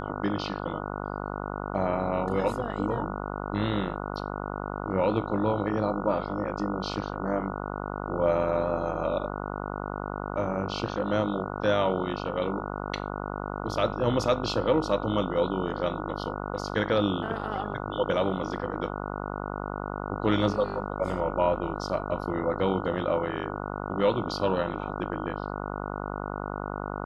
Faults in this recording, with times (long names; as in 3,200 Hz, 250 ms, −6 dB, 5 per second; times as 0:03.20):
mains buzz 50 Hz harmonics 29 −34 dBFS